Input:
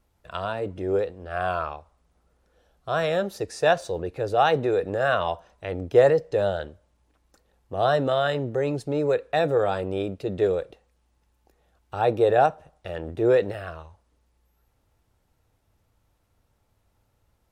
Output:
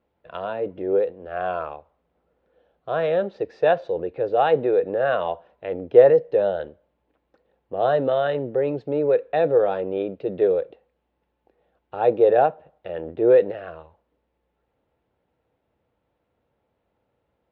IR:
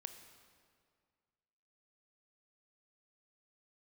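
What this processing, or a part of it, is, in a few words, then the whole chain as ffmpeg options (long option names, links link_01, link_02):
guitar cabinet: -af "highpass=85,equalizer=frequency=100:width_type=q:width=4:gain=-9,equalizer=frequency=500:width_type=q:width=4:gain=4,equalizer=frequency=1200:width_type=q:width=4:gain=-3,lowpass=frequency=3400:width=0.5412,lowpass=frequency=3400:width=1.3066,equalizer=frequency=460:width_type=o:width=2.3:gain=5,volume=-3.5dB"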